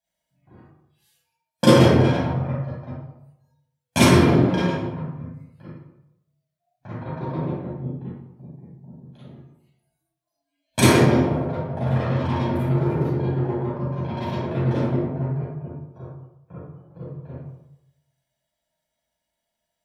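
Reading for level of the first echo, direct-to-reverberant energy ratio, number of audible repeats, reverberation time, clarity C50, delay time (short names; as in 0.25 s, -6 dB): none, -9.5 dB, none, 0.85 s, -4.0 dB, none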